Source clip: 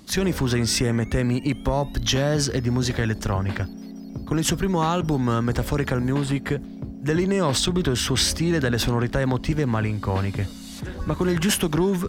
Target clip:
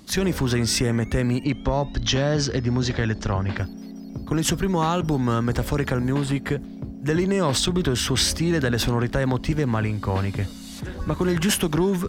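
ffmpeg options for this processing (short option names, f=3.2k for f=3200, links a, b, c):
-filter_complex "[0:a]asettb=1/sr,asplit=3[a][b][c];[a]atrim=end=1.444[d];[b]atrim=start=1.44:end=3.58,asetpts=PTS-STARTPTS,afade=t=in:d=0.004:c=qsin,afade=t=out:st=2.136:d=0.004:c=qsin,lowpass=f=6.4k:w=0.5412,lowpass=f=6.4k:w=1.3066[e];[c]atrim=start=3.576[f];[d][e]acrossfade=d=0.004:c1=hsin:c2=qsin[g];[g][f]acrossfade=d=0.004:c1=qsin:c2=hsin"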